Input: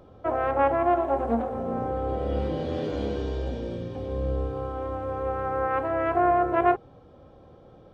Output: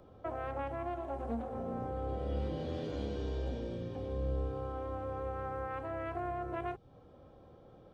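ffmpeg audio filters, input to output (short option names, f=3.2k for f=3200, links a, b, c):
-filter_complex "[0:a]acrossover=split=190|3000[a][b][c];[b]acompressor=threshold=-31dB:ratio=6[d];[a][d][c]amix=inputs=3:normalize=0,volume=-6dB"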